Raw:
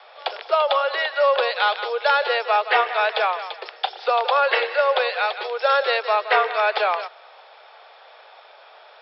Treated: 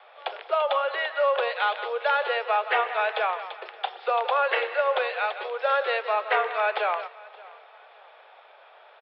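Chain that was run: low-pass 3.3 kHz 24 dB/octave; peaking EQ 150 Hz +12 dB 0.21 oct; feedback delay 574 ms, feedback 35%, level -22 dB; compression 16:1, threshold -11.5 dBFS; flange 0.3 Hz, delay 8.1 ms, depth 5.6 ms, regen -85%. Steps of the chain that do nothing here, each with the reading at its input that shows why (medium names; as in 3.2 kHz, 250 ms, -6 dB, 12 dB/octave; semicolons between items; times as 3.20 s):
peaking EQ 150 Hz: input has nothing below 360 Hz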